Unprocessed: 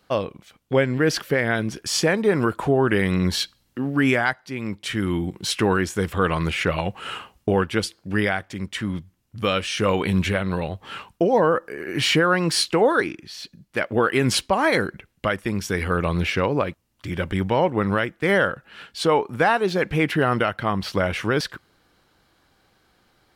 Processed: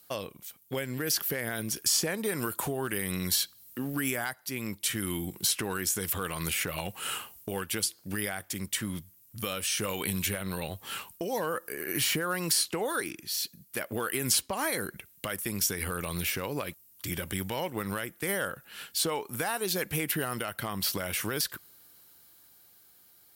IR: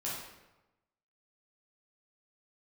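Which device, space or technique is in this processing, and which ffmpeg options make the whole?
FM broadcast chain: -filter_complex "[0:a]highpass=61,dynaudnorm=framelen=250:gausssize=13:maxgain=3dB,acrossover=split=1700|7400[link_01][link_02][link_03];[link_01]acompressor=threshold=-21dB:ratio=4[link_04];[link_02]acompressor=threshold=-31dB:ratio=4[link_05];[link_03]acompressor=threshold=-47dB:ratio=4[link_06];[link_04][link_05][link_06]amix=inputs=3:normalize=0,aemphasis=mode=production:type=50fm,alimiter=limit=-13dB:level=0:latency=1:release=90,asoftclip=type=hard:threshold=-14dB,lowpass=frequency=15000:width=0.5412,lowpass=frequency=15000:width=1.3066,aemphasis=mode=production:type=50fm,volume=-8dB"

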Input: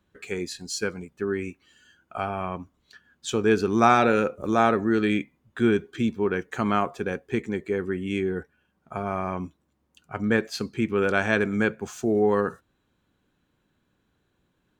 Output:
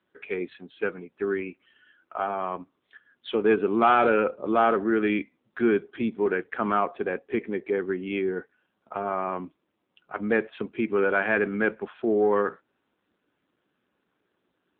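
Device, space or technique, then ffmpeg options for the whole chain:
telephone: -af "highpass=280,lowpass=3500,asoftclip=type=tanh:threshold=-12.5dB,volume=2.5dB" -ar 8000 -c:a libopencore_amrnb -b:a 7400

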